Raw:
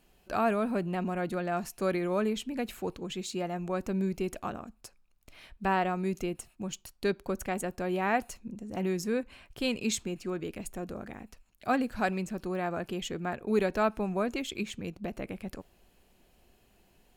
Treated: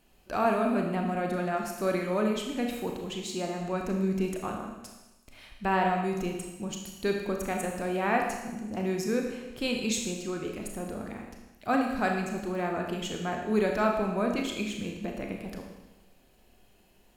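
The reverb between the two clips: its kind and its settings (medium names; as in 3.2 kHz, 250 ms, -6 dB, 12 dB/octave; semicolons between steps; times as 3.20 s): Schroeder reverb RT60 1.1 s, combs from 26 ms, DRR 1.5 dB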